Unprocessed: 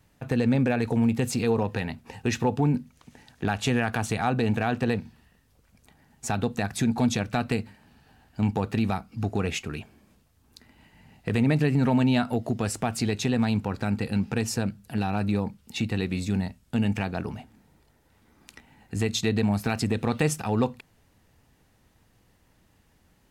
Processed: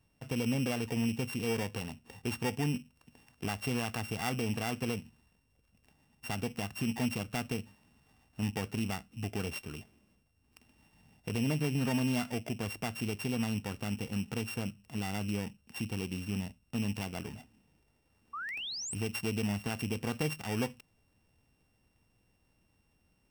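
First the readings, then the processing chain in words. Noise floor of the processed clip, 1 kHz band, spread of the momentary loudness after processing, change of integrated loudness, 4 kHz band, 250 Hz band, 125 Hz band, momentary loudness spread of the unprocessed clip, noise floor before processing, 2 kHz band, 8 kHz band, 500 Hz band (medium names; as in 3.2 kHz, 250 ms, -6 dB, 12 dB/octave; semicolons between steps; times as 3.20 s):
-73 dBFS, -10.5 dB, 9 LU, -8.5 dB, -4.5 dB, -9.0 dB, -9.0 dB, 9 LU, -64 dBFS, -6.5 dB, -6.0 dB, -9.5 dB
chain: sorted samples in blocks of 16 samples; painted sound rise, 18.33–18.95 s, 1.1–9 kHz -30 dBFS; trim -9 dB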